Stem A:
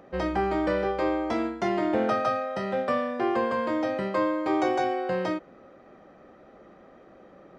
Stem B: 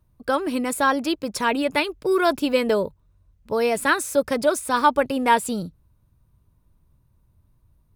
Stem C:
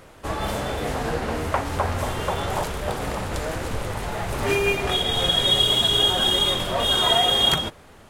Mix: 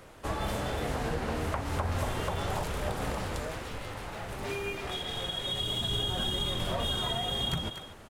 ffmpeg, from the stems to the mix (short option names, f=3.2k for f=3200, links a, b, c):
-filter_complex "[0:a]adelay=300,volume=-4.5dB[a];[2:a]volume=6.5dB,afade=t=out:st=3.05:d=0.62:silence=0.375837,afade=t=in:st=5.45:d=0.5:silence=0.298538,asplit=2[b][c];[c]volume=-19dB[d];[a]aeval=exprs='0.0178*(abs(mod(val(0)/0.0178+3,4)-2)-1)':c=same,alimiter=level_in=16.5dB:limit=-24dB:level=0:latency=1,volume=-16.5dB,volume=0dB[e];[d]aecho=0:1:241:1[f];[b][e][f]amix=inputs=3:normalize=0,acrossover=split=220[g][h];[h]acompressor=threshold=-31dB:ratio=6[i];[g][i]amix=inputs=2:normalize=0"